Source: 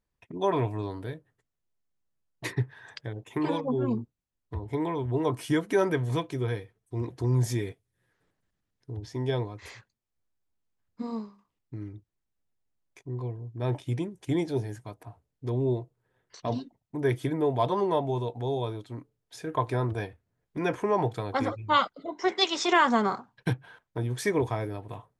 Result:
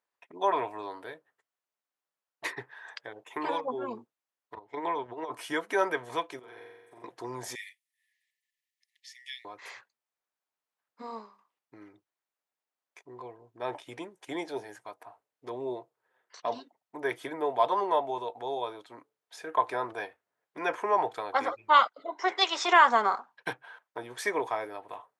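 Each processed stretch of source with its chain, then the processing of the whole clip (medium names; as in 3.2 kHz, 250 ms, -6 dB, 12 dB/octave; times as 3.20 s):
4.55–5.32 s: low-pass 6.9 kHz 24 dB/octave + gate -32 dBFS, range -11 dB + compressor with a negative ratio -29 dBFS, ratio -0.5
6.39–7.04 s: compression 8:1, threshold -41 dBFS + flutter echo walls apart 7.6 m, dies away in 1.2 s
7.55–9.45 s: brick-wall FIR high-pass 1.7 kHz + treble shelf 5.8 kHz +4.5 dB
whole clip: high-pass 830 Hz 12 dB/octave; treble shelf 2 kHz -11 dB; trim +7.5 dB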